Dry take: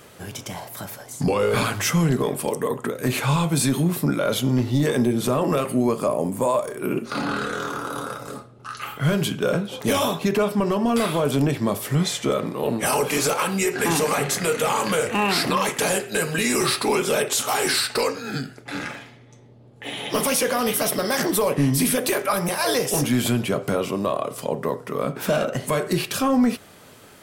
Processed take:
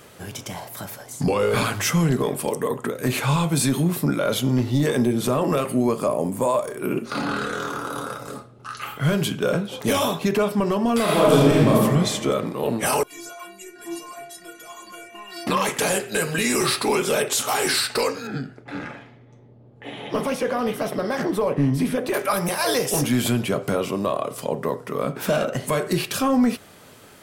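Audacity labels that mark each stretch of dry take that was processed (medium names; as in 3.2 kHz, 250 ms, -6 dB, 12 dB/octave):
11.030000	11.740000	reverb throw, RT60 1.5 s, DRR -5.5 dB
13.030000	15.470000	inharmonic resonator 340 Hz, decay 0.34 s, inharmonicity 0.008
18.270000	22.140000	low-pass 1.3 kHz 6 dB/octave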